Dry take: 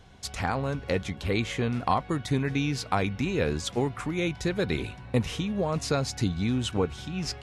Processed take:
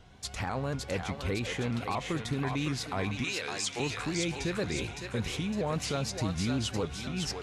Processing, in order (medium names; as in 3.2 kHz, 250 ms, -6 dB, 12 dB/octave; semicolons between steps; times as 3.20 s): 3.24–3.80 s: frequency weighting ITU-R 468; peak limiter -20.5 dBFS, peak gain reduction 11 dB; thinning echo 559 ms, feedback 55%, high-pass 730 Hz, level -3 dB; on a send at -22 dB: reverberation RT60 2.7 s, pre-delay 4 ms; on the sum: vibrato with a chosen wave saw up 4.1 Hz, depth 100 cents; trim -2.5 dB